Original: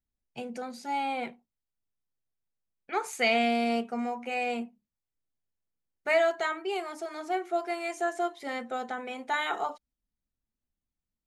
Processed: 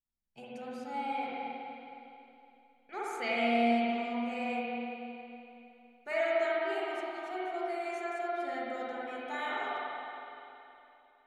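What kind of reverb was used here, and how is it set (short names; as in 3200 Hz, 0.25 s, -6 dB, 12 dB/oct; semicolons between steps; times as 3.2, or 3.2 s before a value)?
spring tank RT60 3 s, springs 46/51 ms, chirp 50 ms, DRR -7.5 dB; gain -12 dB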